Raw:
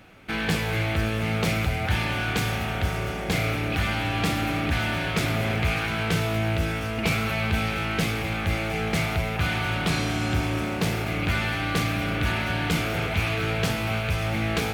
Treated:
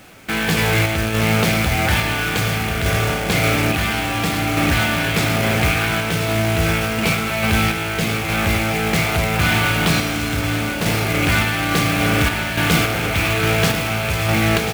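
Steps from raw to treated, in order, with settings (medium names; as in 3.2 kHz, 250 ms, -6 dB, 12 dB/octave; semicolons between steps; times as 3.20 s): bass shelf 82 Hz -5.5 dB; de-hum 92.07 Hz, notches 15; in parallel at +0.5 dB: peak limiter -26.5 dBFS, peak gain reduction 15.5 dB; on the sum: random-step tremolo; companded quantiser 4-bit; on a send: delay 1041 ms -10 dB; on the sum: trim +7 dB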